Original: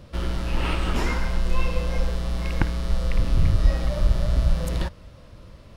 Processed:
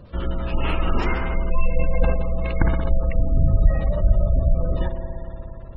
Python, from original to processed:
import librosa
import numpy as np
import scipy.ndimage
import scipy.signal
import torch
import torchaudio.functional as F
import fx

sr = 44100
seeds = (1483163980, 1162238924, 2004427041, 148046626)

y = fx.rev_spring(x, sr, rt60_s=3.7, pass_ms=(59,), chirp_ms=75, drr_db=3.5)
y = fx.spec_gate(y, sr, threshold_db=-30, keep='strong')
y = fx.sustainer(y, sr, db_per_s=43.0, at=(1.7, 3.0))
y = F.gain(torch.from_numpy(y), 1.5).numpy()